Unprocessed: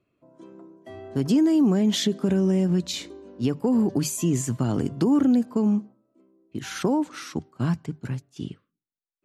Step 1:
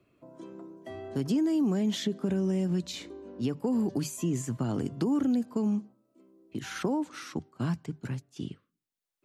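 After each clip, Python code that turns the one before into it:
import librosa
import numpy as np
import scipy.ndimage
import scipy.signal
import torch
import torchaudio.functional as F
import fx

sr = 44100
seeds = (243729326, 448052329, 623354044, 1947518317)

y = fx.band_squash(x, sr, depth_pct=40)
y = y * librosa.db_to_amplitude(-6.5)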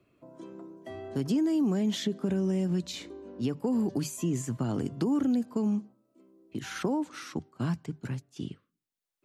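y = x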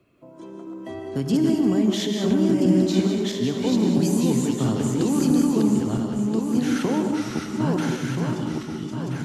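y = fx.reverse_delay_fb(x, sr, ms=664, feedback_pct=57, wet_db=-1.5)
y = y + 10.0 ** (-13.0 / 20.0) * np.pad(y, (int(283 * sr / 1000.0), 0))[:len(y)]
y = fx.rev_gated(y, sr, seeds[0], gate_ms=220, shape='rising', drr_db=4.0)
y = y * librosa.db_to_amplitude(4.5)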